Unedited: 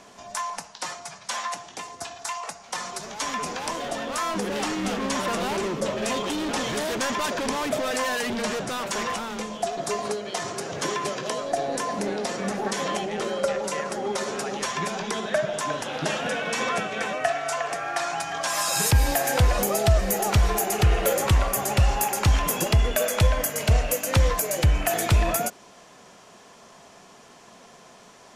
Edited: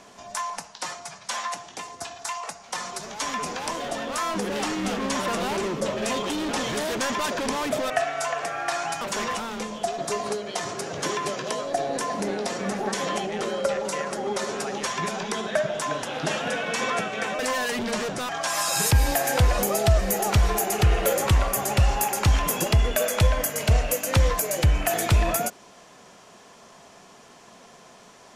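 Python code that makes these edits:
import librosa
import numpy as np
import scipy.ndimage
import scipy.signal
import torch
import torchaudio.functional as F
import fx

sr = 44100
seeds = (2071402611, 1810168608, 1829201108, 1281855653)

y = fx.edit(x, sr, fx.swap(start_s=7.9, length_s=0.9, other_s=17.18, other_length_s=1.11), tone=tone)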